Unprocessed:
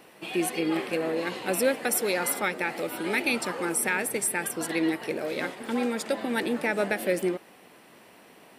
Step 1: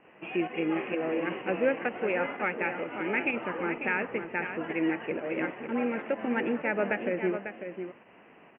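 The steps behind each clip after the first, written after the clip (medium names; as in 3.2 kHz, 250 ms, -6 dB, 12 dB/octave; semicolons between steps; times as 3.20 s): steep low-pass 2.9 kHz 96 dB/octave; volume shaper 127 bpm, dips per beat 1, -8 dB, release 108 ms; delay 546 ms -8.5 dB; trim -2 dB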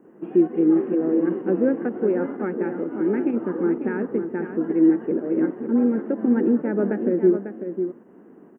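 FFT filter 110 Hz 0 dB, 210 Hz +12 dB, 370 Hz +13 dB, 610 Hz -2 dB, 860 Hz -3 dB, 1.6 kHz -4 dB, 2.5 kHz -24 dB, 6.2 kHz +9 dB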